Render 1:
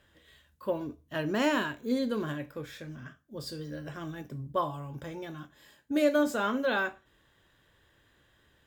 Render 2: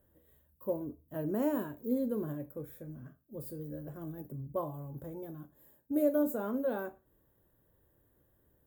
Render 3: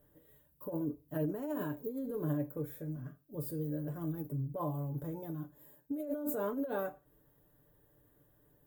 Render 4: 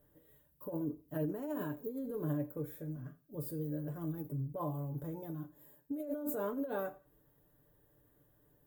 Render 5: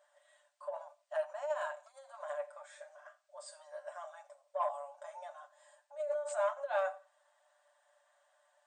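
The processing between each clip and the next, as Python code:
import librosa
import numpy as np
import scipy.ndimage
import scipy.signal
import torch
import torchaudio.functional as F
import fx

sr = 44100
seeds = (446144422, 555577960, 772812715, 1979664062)

y1 = fx.curve_eq(x, sr, hz=(540.0, 2700.0, 5300.0, 15000.0), db=(0, -22, -21, 14))
y1 = y1 * librosa.db_to_amplitude(-2.5)
y2 = fx.over_compress(y1, sr, threshold_db=-36.0, ratio=-1.0)
y2 = y2 + 0.67 * np.pad(y2, (int(6.8 * sr / 1000.0), 0))[:len(y2)]
y2 = y2 * librosa.db_to_amplitude(-1.5)
y3 = fx.echo_feedback(y2, sr, ms=87, feedback_pct=28, wet_db=-22.0)
y3 = y3 * librosa.db_to_amplitude(-1.5)
y4 = 10.0 ** (-27.5 / 20.0) * np.tanh(y3 / 10.0 ** (-27.5 / 20.0))
y4 = fx.brickwall_bandpass(y4, sr, low_hz=560.0, high_hz=9100.0)
y4 = y4 * librosa.db_to_amplitude(8.5)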